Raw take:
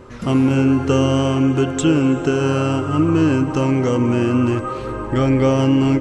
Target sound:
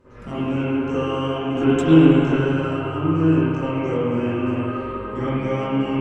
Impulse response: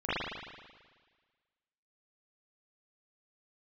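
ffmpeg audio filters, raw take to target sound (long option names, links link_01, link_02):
-filter_complex "[0:a]asettb=1/sr,asplit=3[link_01][link_02][link_03];[link_01]atrim=end=1.514[link_04];[link_02]atrim=start=1.51:end=2.32,asetpts=PTS-STARTPTS,afade=type=in:duration=0.004:curve=qsin,afade=type=out:start_time=0.806:duration=0.004:curve=qsin,acontrast=75[link_05];[link_03]atrim=start=2.316[link_06];[link_04][link_05]acrossfade=duration=0.004:curve1=hsin:curve2=qsin[link_07];[link_07][link_06]acrossfade=duration=0.004:curve1=qsin:curve2=hsin[link_08];[1:a]atrim=start_sample=2205,asetrate=38367,aresample=44100[link_09];[link_08][link_09]afir=irnorm=-1:irlink=0,volume=-15.5dB"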